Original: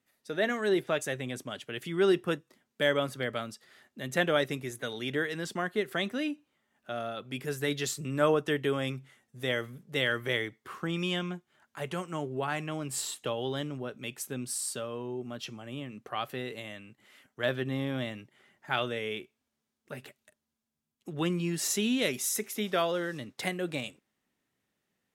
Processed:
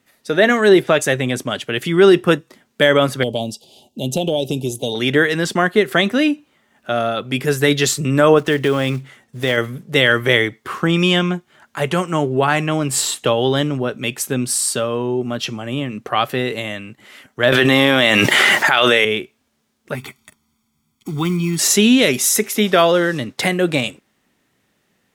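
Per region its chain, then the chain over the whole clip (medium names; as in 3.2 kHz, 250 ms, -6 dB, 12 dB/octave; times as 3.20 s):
3.23–4.95 s: elliptic band-stop 850–2900 Hz, stop band 50 dB + compression, threshold -31 dBFS
8.38–9.58 s: block-companded coder 5-bit + treble shelf 6.4 kHz -5 dB + compression 2:1, threshold -31 dBFS
17.52–19.05 s: high-pass 910 Hz 6 dB/octave + level flattener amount 100%
19.95–21.59 s: block-companded coder 5-bit + comb 0.9 ms, depth 94% + compression 1.5:1, threshold -48 dBFS
whole clip: treble shelf 9.6 kHz -3.5 dB; loudness maximiser +17.5 dB; trim -1 dB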